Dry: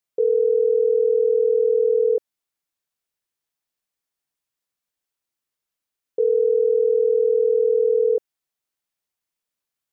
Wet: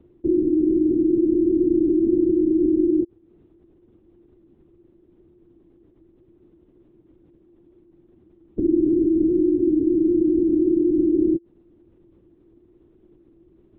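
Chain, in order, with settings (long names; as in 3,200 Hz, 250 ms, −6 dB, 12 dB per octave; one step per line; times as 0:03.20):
compressor on every frequency bin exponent 0.4
speed change −28%
linear-prediction vocoder at 8 kHz whisper
level −1 dB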